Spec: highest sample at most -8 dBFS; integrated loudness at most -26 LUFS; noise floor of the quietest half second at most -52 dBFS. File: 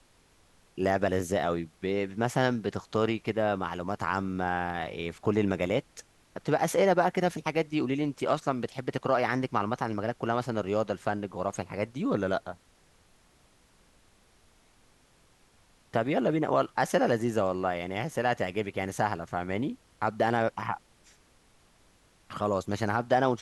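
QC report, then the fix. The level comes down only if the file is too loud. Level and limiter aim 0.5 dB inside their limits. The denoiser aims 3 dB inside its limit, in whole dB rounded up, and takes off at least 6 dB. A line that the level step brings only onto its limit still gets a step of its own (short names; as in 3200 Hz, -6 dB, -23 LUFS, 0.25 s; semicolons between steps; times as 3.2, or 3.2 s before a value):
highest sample -11.5 dBFS: OK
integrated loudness -29.5 LUFS: OK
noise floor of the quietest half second -63 dBFS: OK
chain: none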